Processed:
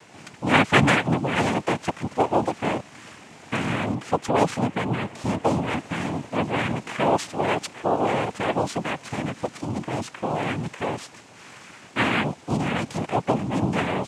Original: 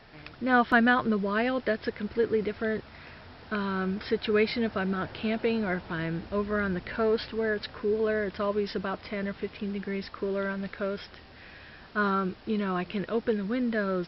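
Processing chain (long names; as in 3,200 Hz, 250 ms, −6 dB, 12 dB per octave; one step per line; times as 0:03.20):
0:03.94–0:05.68: high-shelf EQ 3,200 Hz −11.5 dB
cochlear-implant simulation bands 4
level +4.5 dB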